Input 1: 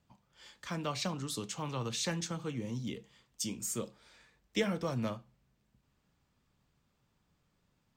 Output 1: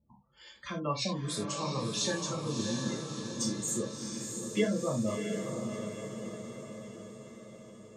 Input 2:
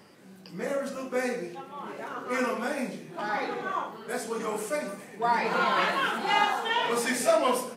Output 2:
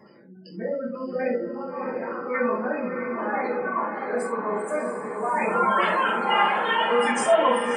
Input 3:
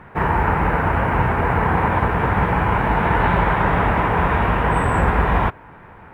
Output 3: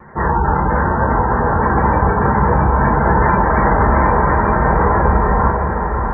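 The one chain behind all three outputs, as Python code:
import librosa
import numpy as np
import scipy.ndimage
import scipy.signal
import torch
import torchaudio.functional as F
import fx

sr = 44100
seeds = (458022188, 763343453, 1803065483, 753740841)

y = fx.spec_gate(x, sr, threshold_db=-15, keep='strong')
y = fx.wow_flutter(y, sr, seeds[0], rate_hz=2.1, depth_cents=33.0)
y = fx.echo_diffused(y, sr, ms=667, feedback_pct=58, wet_db=-5.0)
y = fx.rev_gated(y, sr, seeds[1], gate_ms=110, shape='falling', drr_db=-2.0)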